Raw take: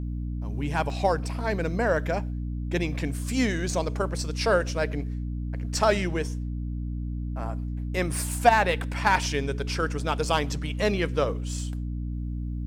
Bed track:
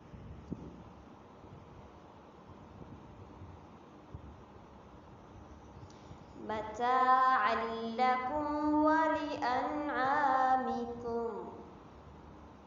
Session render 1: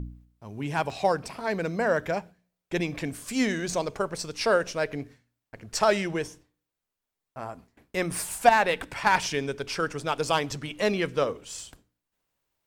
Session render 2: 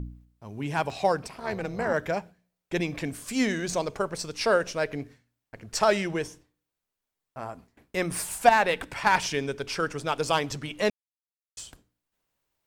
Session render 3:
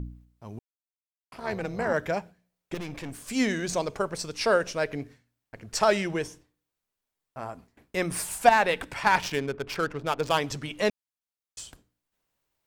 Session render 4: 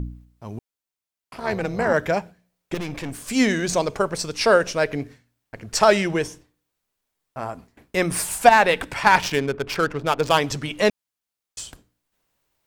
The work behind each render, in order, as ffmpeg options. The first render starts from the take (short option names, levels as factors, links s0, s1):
-af "bandreject=f=60:t=h:w=4,bandreject=f=120:t=h:w=4,bandreject=f=180:t=h:w=4,bandreject=f=240:t=h:w=4,bandreject=f=300:t=h:w=4"
-filter_complex "[0:a]asettb=1/sr,asplit=3[s0][s1][s2];[s0]atrim=end=1.274[s3];[s1]atrim=start=1.27:end=1.94,asetpts=PTS-STARTPTS,afade=t=in:d=0.004:c=qsin,afade=t=out:st=0.666:d=0.004:c=qsin,tremolo=f=300:d=0.71[s4];[s2]atrim=start=1.936[s5];[s3][s4]acrossfade=d=0.004:c1=hsin:c2=qsin[s6];[s6][s5]acrossfade=d=0.004:c1=qsin:c2=hsin,asplit=3[s7][s8][s9];[s7]atrim=end=10.9,asetpts=PTS-STARTPTS,afade=t=out:st=10.896:d=0.004:c=hsin[s10];[s8]atrim=start=10.9:end=11.57,asetpts=PTS-STARTPTS,volume=0[s11];[s9]atrim=start=11.57,asetpts=PTS-STARTPTS,afade=t=in:d=0.004:c=hsin[s12];[s10][s11][s12]concat=n=3:v=0:a=1"
-filter_complex "[0:a]asettb=1/sr,asplit=3[s0][s1][s2];[s0]atrim=end=2.744[s3];[s1]atrim=start=2.74:end=3.3,asetpts=PTS-STARTPTS,afade=t=in:d=0.004:c=qsin,afade=t=out:st=0.556:d=0.004:c=qsin,aeval=exprs='(tanh(44.7*val(0)+0.55)-tanh(0.55))/44.7':c=same[s4];[s2]atrim=start=3.296[s5];[s3][s4]acrossfade=d=0.004:c1=hsin:c2=qsin[s6];[s6][s5]acrossfade=d=0.004:c1=qsin:c2=hsin,asettb=1/sr,asplit=3[s7][s8][s9];[s7]atrim=end=9.184[s10];[s8]atrim=start=9.18:end=10.38,asetpts=PTS-STARTPTS,afade=t=in:d=0.004:c=qsin,afade=t=out:st=1.196:d=0.004:c=qsin,adynamicsmooth=sensitivity=7.5:basefreq=890[s11];[s9]atrim=start=10.376[s12];[s10][s11]acrossfade=d=0.004:c1=hsin:c2=qsin[s13];[s13][s12]acrossfade=d=0.004:c1=qsin:c2=hsin,asplit=3[s14][s15][s16];[s14]atrim=end=0.59,asetpts=PTS-STARTPTS,afade=t=out:st=0.586:d=0.004:c=hsin[s17];[s15]atrim=start=0.59:end=1.32,asetpts=PTS-STARTPTS,volume=0[s18];[s16]atrim=start=1.32,asetpts=PTS-STARTPTS,afade=t=in:d=0.004:c=hsin[s19];[s17][s18][s19]concat=n=3:v=0:a=1"
-af "volume=2.11,alimiter=limit=0.891:level=0:latency=1"